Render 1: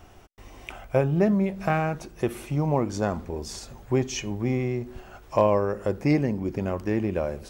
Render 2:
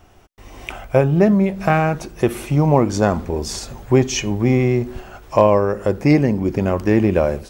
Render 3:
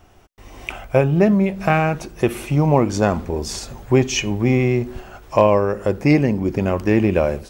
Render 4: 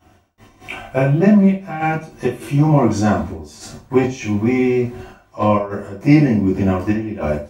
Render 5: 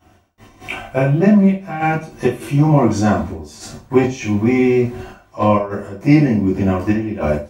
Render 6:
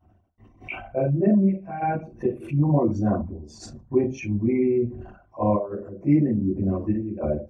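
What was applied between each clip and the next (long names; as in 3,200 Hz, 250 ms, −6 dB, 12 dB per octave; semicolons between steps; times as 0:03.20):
automatic gain control gain up to 12.5 dB
dynamic equaliser 2,600 Hz, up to +5 dB, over −40 dBFS, Q 2.7; level −1 dB
notch comb filter 420 Hz; gate pattern "x.x.xxxxxx.." 100 BPM −12 dB; convolution reverb RT60 0.35 s, pre-delay 7 ms, DRR −10.5 dB; level −8.5 dB
automatic gain control gain up to 5 dB
spectral envelope exaggerated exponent 2; level −7.5 dB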